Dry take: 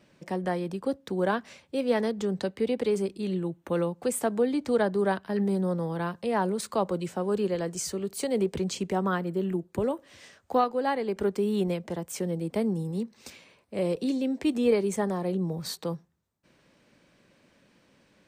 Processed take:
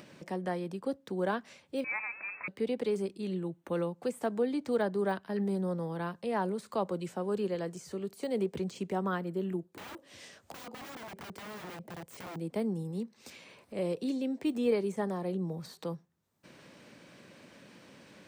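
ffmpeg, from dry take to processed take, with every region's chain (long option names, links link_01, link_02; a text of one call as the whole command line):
ffmpeg -i in.wav -filter_complex "[0:a]asettb=1/sr,asplit=3[link_01][link_02][link_03];[link_01]atrim=end=1.844[link_04];[link_02]atrim=start=1.84:end=2.48,asetpts=PTS-STARTPTS,afade=type=in:duration=0.004:curve=qsin,afade=type=out:start_time=0.636:duration=0.004:curve=qsin,aeval=exprs='val(0)+0.5*0.0237*sgn(val(0))':channel_layout=same,highpass=frequency=880:poles=1,lowpass=frequency=2400:width_type=q:width=0.5098,lowpass=frequency=2400:width_type=q:width=0.6013,lowpass=frequency=2400:width_type=q:width=0.9,lowpass=frequency=2400:width_type=q:width=2.563,afreqshift=-2800[link_05];[link_03]atrim=start=2.476[link_06];[link_04][link_05]acrossfade=duration=0.004:curve1=hsin:curve2=qsin[link_07];[link_07][link_06]acrossfade=duration=0.004:curve1=qsin:curve2=hsin,asettb=1/sr,asplit=3[link_08][link_09][link_10];[link_08]atrim=end=9.704[link_11];[link_09]atrim=start=9.7:end=12.36,asetpts=PTS-STARTPTS,afade=type=in:duration=0.004:curve=qsin,afade=type=out:start_time=2.656:duration=0.004:curve=qsin,highpass=42,equalizer=frequency=1400:width_type=o:width=1.4:gain=-4,aeval=exprs='(mod(33.5*val(0)+1,2)-1)/33.5':channel_layout=same[link_12];[link_10]atrim=start=12.356[link_13];[link_11][link_12]acrossfade=duration=0.004:curve1=hsin:curve2=qsin[link_14];[link_14][link_13]acrossfade=duration=0.004:curve1=qsin:curve2=hsin,deesser=1,highpass=100,acompressor=mode=upward:threshold=-37dB:ratio=2.5,volume=-5dB" out.wav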